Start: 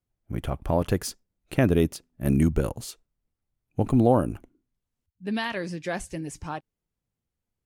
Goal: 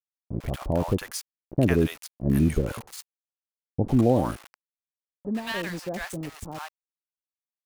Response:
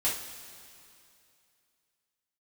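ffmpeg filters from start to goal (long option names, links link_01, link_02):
-filter_complex "[0:a]aeval=exprs='val(0)*gte(abs(val(0)),0.0168)':channel_layout=same,acrossover=split=810[link_01][link_02];[link_02]adelay=100[link_03];[link_01][link_03]amix=inputs=2:normalize=0"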